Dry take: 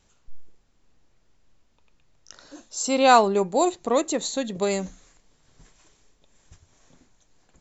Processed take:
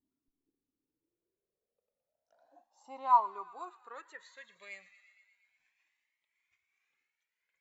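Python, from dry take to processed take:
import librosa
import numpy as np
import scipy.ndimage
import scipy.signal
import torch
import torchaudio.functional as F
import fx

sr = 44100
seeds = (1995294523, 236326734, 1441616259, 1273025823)

y = fx.filter_sweep_bandpass(x, sr, from_hz=270.0, to_hz=2200.0, start_s=0.77, end_s=4.6, q=7.6)
y = fx.echo_wet_highpass(y, sr, ms=117, feedback_pct=71, hz=1600.0, wet_db=-14)
y = fx.comb_cascade(y, sr, direction='rising', hz=0.32)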